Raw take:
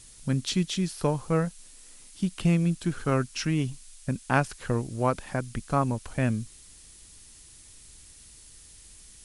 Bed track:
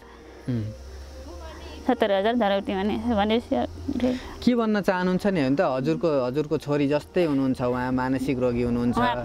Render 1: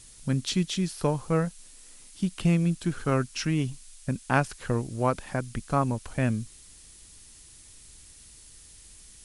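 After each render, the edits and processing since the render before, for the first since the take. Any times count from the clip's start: no audible change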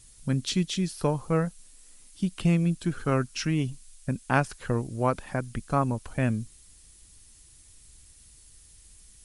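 noise reduction 6 dB, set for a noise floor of -51 dBFS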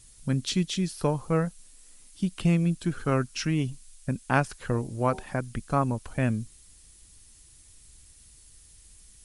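4.70–5.23 s: de-hum 76.15 Hz, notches 13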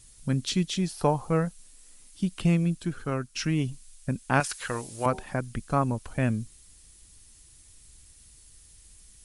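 0.76–1.30 s: peaking EQ 780 Hz +9 dB 0.62 oct; 2.53–3.35 s: fade out, to -7.5 dB; 4.40–5.06 s: tilt shelf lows -10 dB, about 700 Hz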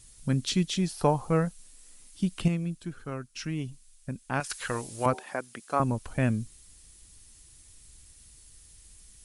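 2.48–4.50 s: gain -6.5 dB; 5.14–5.80 s: high-pass 390 Hz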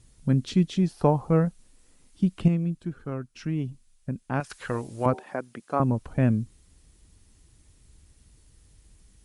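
high-pass 220 Hz 6 dB/octave; tilt EQ -3.5 dB/octave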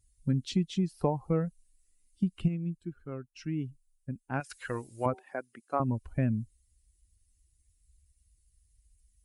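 expander on every frequency bin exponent 1.5; compression 3:1, threshold -25 dBFS, peak gain reduction 7.5 dB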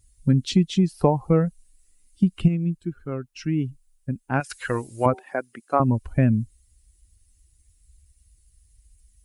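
trim +9.5 dB

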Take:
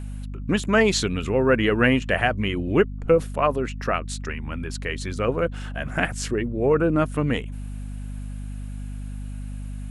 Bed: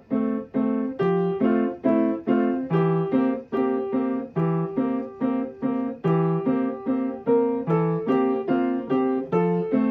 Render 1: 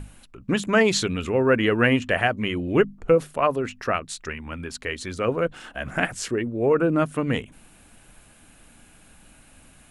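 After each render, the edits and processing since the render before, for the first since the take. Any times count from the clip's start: hum notches 50/100/150/200/250 Hz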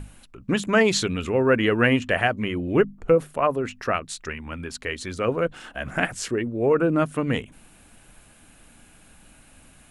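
2.39–3.66 s: dynamic bell 4.9 kHz, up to -7 dB, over -44 dBFS, Q 0.71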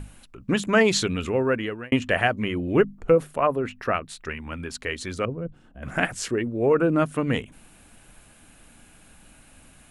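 1.25–1.92 s: fade out; 3.43–4.29 s: peaking EQ 6.5 kHz -8.5 dB 1.3 oct; 5.25–5.83 s: FFT filter 160 Hz 0 dB, 780 Hz -16 dB, 1.9 kHz -23 dB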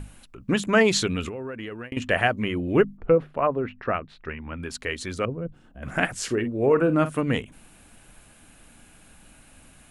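1.28–1.97 s: compression 12:1, threshold -30 dBFS; 2.97–4.63 s: distance through air 320 m; 6.16–7.22 s: doubling 46 ms -12.5 dB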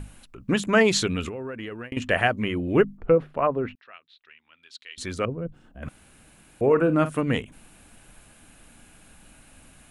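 3.75–4.98 s: band-pass filter 3.7 kHz, Q 3.7; 5.89–6.61 s: room tone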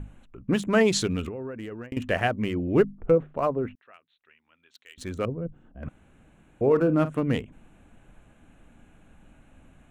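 local Wiener filter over 9 samples; peaking EQ 1.9 kHz -5 dB 2.7 oct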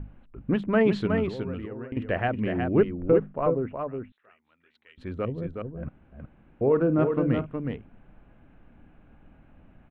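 distance through air 440 m; delay 367 ms -5.5 dB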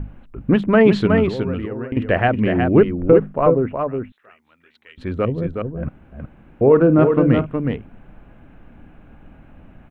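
trim +9.5 dB; peak limiter -2 dBFS, peak gain reduction 2.5 dB

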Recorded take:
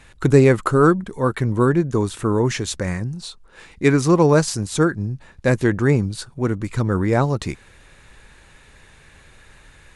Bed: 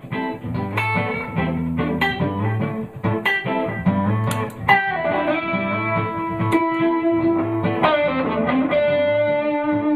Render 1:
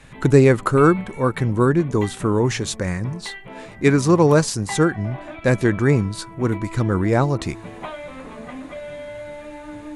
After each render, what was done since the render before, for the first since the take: add bed -16 dB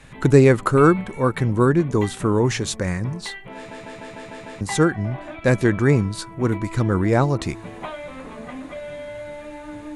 3.56 s: stutter in place 0.15 s, 7 plays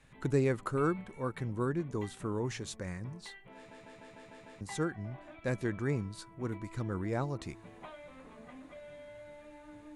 trim -16 dB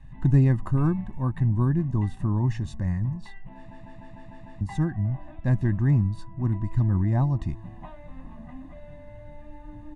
tilt EQ -3.5 dB/octave; comb 1.1 ms, depth 92%

